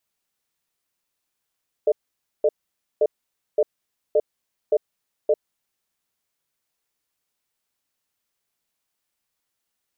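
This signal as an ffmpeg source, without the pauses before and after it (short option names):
-f lavfi -i "aevalsrc='0.141*(sin(2*PI*437*t)+sin(2*PI*604*t))*clip(min(mod(t,0.57),0.05-mod(t,0.57))/0.005,0,1)':d=3.57:s=44100"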